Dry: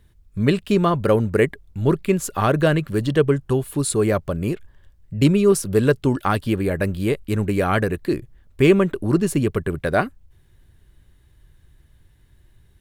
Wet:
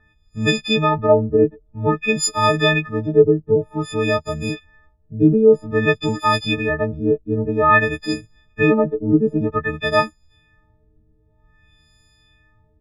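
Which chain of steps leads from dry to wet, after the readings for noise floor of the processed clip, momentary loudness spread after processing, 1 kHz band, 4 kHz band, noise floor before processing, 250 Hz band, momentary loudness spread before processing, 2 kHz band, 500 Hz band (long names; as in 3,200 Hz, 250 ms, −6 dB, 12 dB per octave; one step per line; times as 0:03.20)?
−60 dBFS, 11 LU, +5.0 dB, +8.0 dB, −56 dBFS, +0.5 dB, 8 LU, +6.5 dB, +2.5 dB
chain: every partial snapped to a pitch grid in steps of 6 semitones
auto-filter low-pass sine 0.52 Hz 380–5,900 Hz
level −2 dB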